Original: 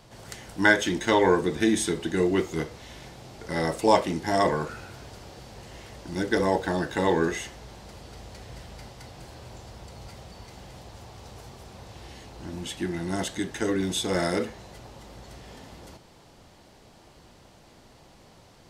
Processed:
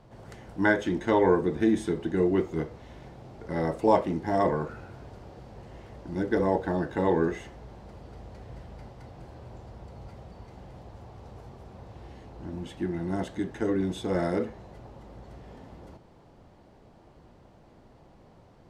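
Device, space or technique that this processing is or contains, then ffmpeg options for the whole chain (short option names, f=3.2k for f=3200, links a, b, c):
through cloth: -af "highshelf=f=2.2k:g=-18"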